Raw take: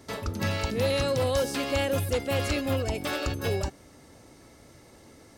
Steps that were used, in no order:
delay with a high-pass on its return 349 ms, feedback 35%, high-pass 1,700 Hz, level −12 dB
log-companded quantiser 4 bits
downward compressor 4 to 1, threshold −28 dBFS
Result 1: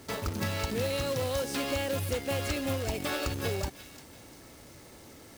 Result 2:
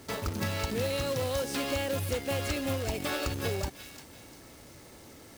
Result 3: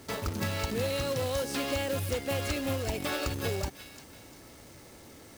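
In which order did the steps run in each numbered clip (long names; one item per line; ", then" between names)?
log-companded quantiser, then downward compressor, then delay with a high-pass on its return
log-companded quantiser, then delay with a high-pass on its return, then downward compressor
delay with a high-pass on its return, then log-companded quantiser, then downward compressor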